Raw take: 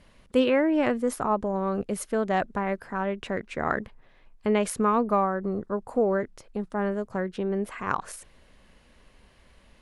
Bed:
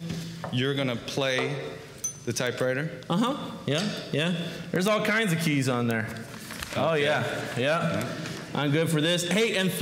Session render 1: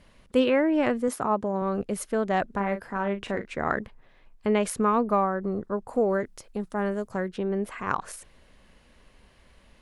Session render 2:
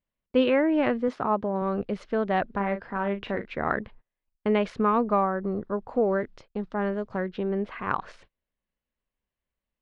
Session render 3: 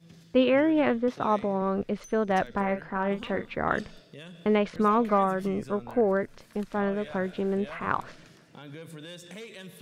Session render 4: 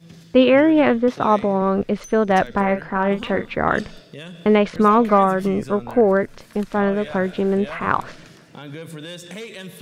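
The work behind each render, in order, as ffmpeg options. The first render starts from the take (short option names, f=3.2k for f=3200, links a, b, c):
-filter_complex "[0:a]asettb=1/sr,asplit=3[a][b][c];[a]atrim=end=1.084[d];[b]atrim=start=1.08:end=1.62,asetpts=PTS-STARTPTS,afade=t=in:d=0.004:c=qsin,afade=t=out:st=0.536:d=0.004:c=qsin,highpass=79[e];[c]atrim=start=1.616[f];[d][e]acrossfade=d=0.004:c1=hsin:c2=qsin[g];[g][f]acrossfade=d=0.004:c1=qsin:c2=hsin,asettb=1/sr,asplit=3[h][i][j];[h]atrim=end=2.484[k];[i]atrim=start=2.48:end=3.47,asetpts=PTS-STARTPTS,afade=t=in:d=0.004:c=qsin,afade=t=out:st=0.986:d=0.004:c=qsin,asplit=2[l][m];[m]adelay=40,volume=-9.5dB[n];[l][n]amix=inputs=2:normalize=0,atrim=end_sample=43659[o];[j]atrim=start=3.466[p];[k][o]acrossfade=d=0.004:c1=hsin:c2=qsin[q];[q][p]acrossfade=d=0.004:c1=qsin:c2=hsin,asettb=1/sr,asplit=3[r][s][t];[r]atrim=end=5.934[u];[s]atrim=start=5.93:end=7.28,asetpts=PTS-STARTPTS,afade=t=in:d=0.004:c=qsin,afade=t=out:st=1.346:d=0.004:c=qsin,aemphasis=mode=production:type=cd[v];[t]atrim=start=7.276[w];[u][v]acrossfade=d=0.004:c1=hsin:c2=qsin[x];[x][w]acrossfade=d=0.004:c1=qsin:c2=hsin"
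-af "agate=range=-32dB:threshold=-46dB:ratio=16:detection=peak,lowpass=f=4.2k:w=0.5412,lowpass=f=4.2k:w=1.3066"
-filter_complex "[1:a]volume=-19dB[a];[0:a][a]amix=inputs=2:normalize=0"
-af "volume=8.5dB,alimiter=limit=-3dB:level=0:latency=1"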